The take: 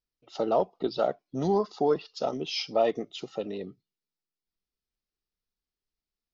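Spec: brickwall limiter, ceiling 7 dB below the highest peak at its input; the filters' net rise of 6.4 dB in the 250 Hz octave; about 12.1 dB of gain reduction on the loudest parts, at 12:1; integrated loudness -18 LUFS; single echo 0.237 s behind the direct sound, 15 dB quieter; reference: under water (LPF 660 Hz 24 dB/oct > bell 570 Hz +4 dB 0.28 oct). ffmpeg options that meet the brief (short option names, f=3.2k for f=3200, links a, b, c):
-af "equalizer=f=250:t=o:g=8.5,acompressor=threshold=-29dB:ratio=12,alimiter=level_in=1dB:limit=-24dB:level=0:latency=1,volume=-1dB,lowpass=f=660:w=0.5412,lowpass=f=660:w=1.3066,equalizer=f=570:t=o:w=0.28:g=4,aecho=1:1:237:0.178,volume=19.5dB"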